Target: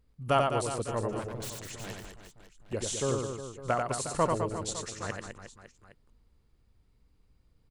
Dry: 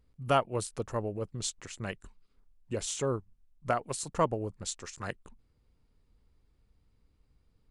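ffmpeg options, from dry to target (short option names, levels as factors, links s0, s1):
-filter_complex "[0:a]asettb=1/sr,asplit=3[s0][s1][s2];[s0]atrim=end=1.194[s3];[s1]atrim=start=1.19:end=2.73,asetpts=PTS-STARTPTS,afade=t=in:d=0.004:c=qsin,afade=t=out:st=1.536:d=0.004:c=qsin,aeval=exprs='0.0178*(abs(mod(val(0)/0.0178+3,4)-2)-1)':c=same[s4];[s2]atrim=start=2.726[s5];[s3][s4]acrossfade=d=0.004:c1=hsin:c2=qsin[s6];[s6][s5]acrossfade=d=0.004:c1=qsin:c2=hsin,aecho=1:1:90|207|359.1|556.8|813.9:0.631|0.398|0.251|0.158|0.1"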